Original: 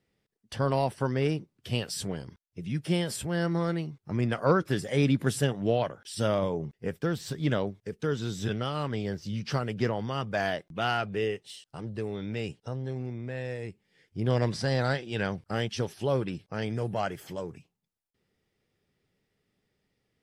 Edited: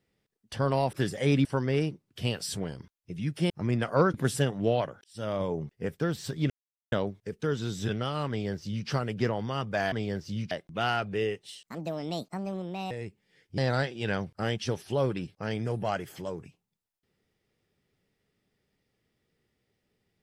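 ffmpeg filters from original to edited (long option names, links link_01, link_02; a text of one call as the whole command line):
ffmpeg -i in.wav -filter_complex "[0:a]asplit=12[link_01][link_02][link_03][link_04][link_05][link_06][link_07][link_08][link_09][link_10][link_11][link_12];[link_01]atrim=end=0.932[link_13];[link_02]atrim=start=4.638:end=5.162[link_14];[link_03]atrim=start=0.928:end=2.982[link_15];[link_04]atrim=start=3.998:end=4.642[link_16];[link_05]atrim=start=5.158:end=6.06,asetpts=PTS-STARTPTS,afade=type=out:start_time=0.898:duration=0.004:curve=hsin[link_17];[link_06]atrim=start=6.06:end=7.52,asetpts=PTS-STARTPTS,afade=type=in:duration=0.48,afade=type=out:start_time=1.456:duration=0.004:curve=hsin,apad=pad_dur=0.42[link_18];[link_07]atrim=start=7.52:end=10.522,asetpts=PTS-STARTPTS,afade=type=in:duration=0.004:curve=hsin[link_19];[link_08]atrim=start=8.888:end=9.482[link_20];[link_09]atrim=start=10.518:end=11.674[link_21];[link_10]atrim=start=11.67:end=13.53,asetpts=PTS-STARTPTS,asetrate=65709,aresample=44100,atrim=end_sample=55051,asetpts=PTS-STARTPTS[link_22];[link_11]atrim=start=13.526:end=14.202[link_23];[link_12]atrim=start=14.688[link_24];[link_13][link_14]acrossfade=duration=0.004:curve1=hsin:curve2=hsin[link_25];[link_25][link_15]acrossfade=duration=0.004:curve1=hsin:curve2=hsin[link_26];[link_26][link_16]acrossfade=duration=0.004:curve1=hsin:curve2=hsin[link_27];[link_17][link_18][link_19]concat=n=3:v=0:a=1[link_28];[link_27][link_28]acrossfade=duration=0.004:curve1=hsin:curve2=hsin[link_29];[link_29][link_20]acrossfade=duration=0.004:curve1=hsin:curve2=hsin[link_30];[link_30][link_21]acrossfade=duration=0.004:curve1=hsin:curve2=hsin[link_31];[link_31][link_22]acrossfade=duration=0.004:curve1=hsin:curve2=hsin[link_32];[link_32][link_23]acrossfade=duration=0.004:curve1=hsin:curve2=hsin[link_33];[link_33][link_24]acrossfade=duration=0.004:curve1=hsin:curve2=hsin" out.wav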